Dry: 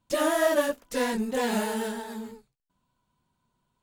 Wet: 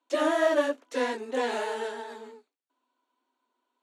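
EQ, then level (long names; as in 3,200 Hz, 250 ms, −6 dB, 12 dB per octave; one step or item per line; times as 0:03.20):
Butterworth high-pass 250 Hz 96 dB per octave
high-frequency loss of the air 85 metres
notch filter 5,000 Hz, Q 11
0.0 dB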